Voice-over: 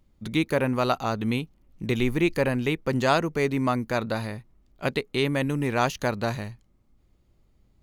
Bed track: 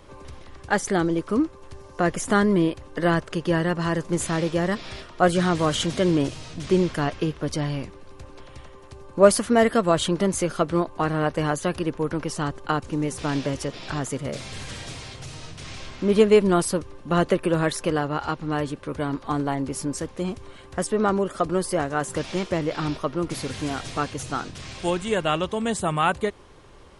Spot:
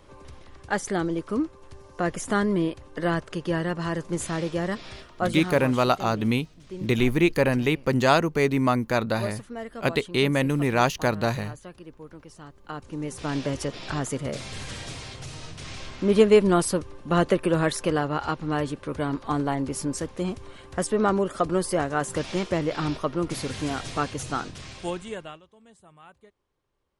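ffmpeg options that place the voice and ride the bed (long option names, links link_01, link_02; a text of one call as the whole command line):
ffmpeg -i stem1.wav -i stem2.wav -filter_complex "[0:a]adelay=5000,volume=2.5dB[link_01];[1:a]volume=13.5dB,afade=type=out:start_time=4.87:duration=0.93:silence=0.199526,afade=type=in:start_time=12.57:duration=1.05:silence=0.133352,afade=type=out:start_time=24.38:duration=1.03:silence=0.0375837[link_02];[link_01][link_02]amix=inputs=2:normalize=0" out.wav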